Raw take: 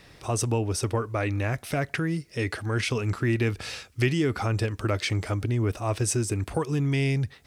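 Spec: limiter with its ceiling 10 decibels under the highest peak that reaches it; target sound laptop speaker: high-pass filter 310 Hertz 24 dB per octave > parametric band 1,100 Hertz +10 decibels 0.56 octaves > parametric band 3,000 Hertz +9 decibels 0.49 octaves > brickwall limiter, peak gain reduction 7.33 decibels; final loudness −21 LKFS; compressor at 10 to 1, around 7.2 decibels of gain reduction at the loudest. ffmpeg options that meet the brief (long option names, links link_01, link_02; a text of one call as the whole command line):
ffmpeg -i in.wav -af "acompressor=threshold=-27dB:ratio=10,alimiter=level_in=2.5dB:limit=-24dB:level=0:latency=1,volume=-2.5dB,highpass=frequency=310:width=0.5412,highpass=frequency=310:width=1.3066,equalizer=frequency=1100:width_type=o:width=0.56:gain=10,equalizer=frequency=3000:width_type=o:width=0.49:gain=9,volume=18dB,alimiter=limit=-10.5dB:level=0:latency=1" out.wav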